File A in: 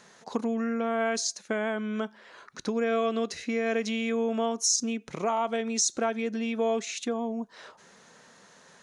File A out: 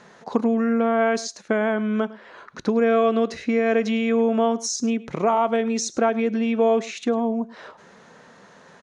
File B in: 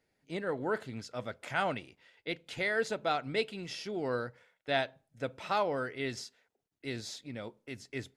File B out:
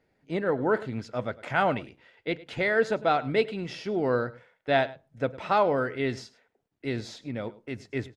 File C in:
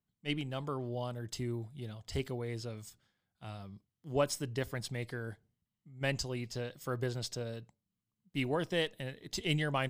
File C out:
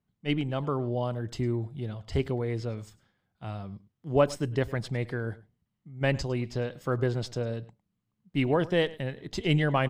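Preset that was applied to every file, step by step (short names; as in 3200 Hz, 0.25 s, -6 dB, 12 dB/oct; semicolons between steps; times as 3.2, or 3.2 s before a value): LPF 1700 Hz 6 dB/oct; echo 0.104 s -20 dB; gain +8.5 dB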